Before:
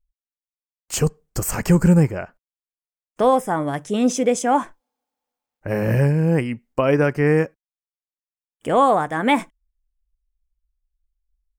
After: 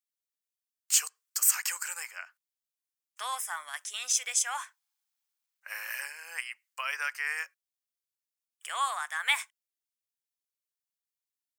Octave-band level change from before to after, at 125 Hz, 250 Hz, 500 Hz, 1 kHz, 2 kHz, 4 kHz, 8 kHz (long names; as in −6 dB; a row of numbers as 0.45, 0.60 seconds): below −40 dB, below −40 dB, −35.0 dB, −15.0 dB, −4.0 dB, 0.0 dB, +3.0 dB